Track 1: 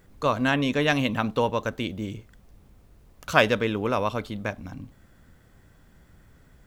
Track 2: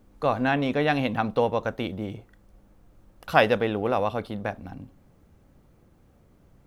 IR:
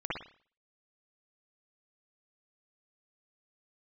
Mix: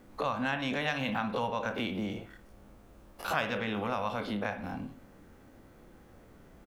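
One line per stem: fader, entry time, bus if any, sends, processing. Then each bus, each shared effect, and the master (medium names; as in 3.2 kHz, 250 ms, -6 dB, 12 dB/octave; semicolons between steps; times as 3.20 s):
-5.5 dB, 0.00 s, send -12 dB, level-controlled noise filter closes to 2.7 kHz, open at -24 dBFS
0.0 dB, 0.4 ms, send -16.5 dB, every event in the spectrogram widened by 60 ms; steep high-pass 200 Hz 48 dB/octave; compression, threshold -25 dBFS, peak gain reduction 15.5 dB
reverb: on, pre-delay 52 ms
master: compression 2:1, threshold -34 dBFS, peak gain reduction 10.5 dB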